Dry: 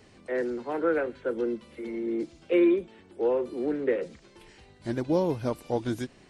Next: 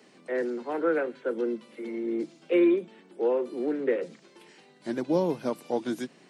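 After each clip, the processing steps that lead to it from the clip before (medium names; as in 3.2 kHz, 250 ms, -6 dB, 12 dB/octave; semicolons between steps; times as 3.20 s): steep high-pass 150 Hz 48 dB/octave; hum notches 50/100/150/200 Hz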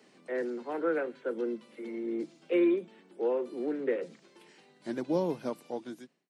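fade out at the end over 0.91 s; trim -4 dB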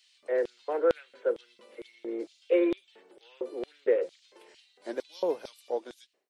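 LFO high-pass square 2.2 Hz 490–3400 Hz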